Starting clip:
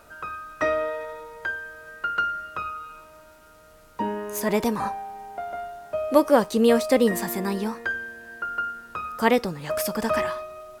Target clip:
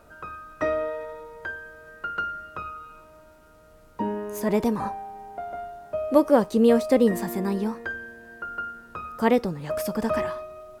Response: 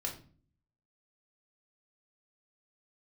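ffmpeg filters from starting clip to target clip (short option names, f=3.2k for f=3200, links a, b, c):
-af "tiltshelf=f=890:g=4.5,volume=-2.5dB"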